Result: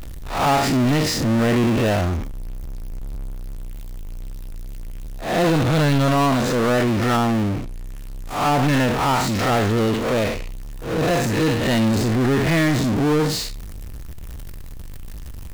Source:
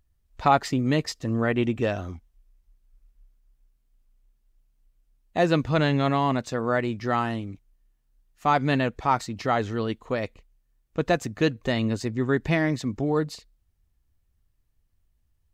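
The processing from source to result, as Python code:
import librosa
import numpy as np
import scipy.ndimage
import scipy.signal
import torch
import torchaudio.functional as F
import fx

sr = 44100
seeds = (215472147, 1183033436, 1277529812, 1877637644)

y = fx.spec_blur(x, sr, span_ms=132.0)
y = fx.env_lowpass_down(y, sr, base_hz=990.0, full_db=-22.0, at=(7.16, 8.61), fade=0.02)
y = fx.power_curve(y, sr, exponent=0.35)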